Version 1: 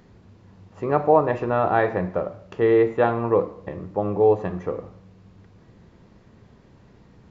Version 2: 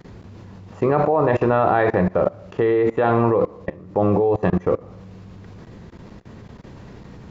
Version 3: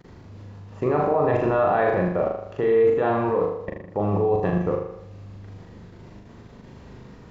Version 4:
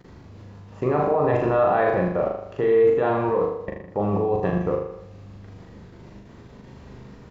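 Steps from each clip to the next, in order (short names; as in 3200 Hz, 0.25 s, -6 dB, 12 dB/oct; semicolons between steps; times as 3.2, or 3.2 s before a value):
in parallel at +2.5 dB: limiter -14 dBFS, peak gain reduction 9.5 dB; on the sum: level quantiser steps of 23 dB; gain +6 dB
flutter echo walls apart 6.8 m, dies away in 0.71 s; gain -6 dB
doubler 15 ms -11.5 dB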